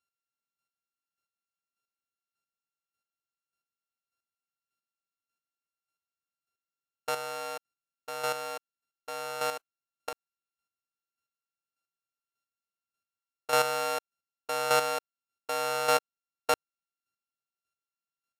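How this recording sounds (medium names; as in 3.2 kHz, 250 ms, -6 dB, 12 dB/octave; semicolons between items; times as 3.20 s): a buzz of ramps at a fixed pitch in blocks of 32 samples; chopped level 1.7 Hz, depth 60%, duty 15%; Vorbis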